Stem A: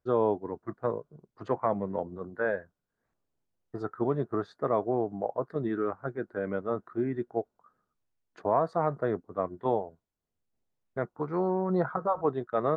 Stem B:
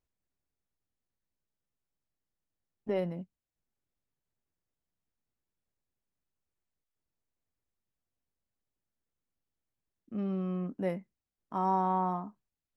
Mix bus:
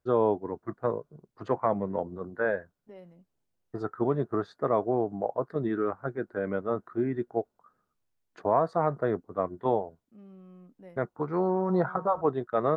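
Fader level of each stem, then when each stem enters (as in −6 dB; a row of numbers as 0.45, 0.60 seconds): +1.5, −17.0 decibels; 0.00, 0.00 seconds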